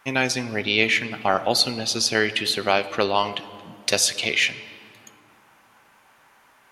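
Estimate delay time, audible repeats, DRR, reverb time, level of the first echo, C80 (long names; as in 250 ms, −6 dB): no echo audible, no echo audible, 11.5 dB, 2.2 s, no echo audible, 16.0 dB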